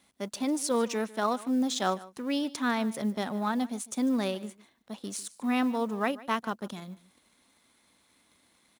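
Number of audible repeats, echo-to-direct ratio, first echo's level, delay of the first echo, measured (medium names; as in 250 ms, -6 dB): 1, -19.5 dB, -19.5 dB, 149 ms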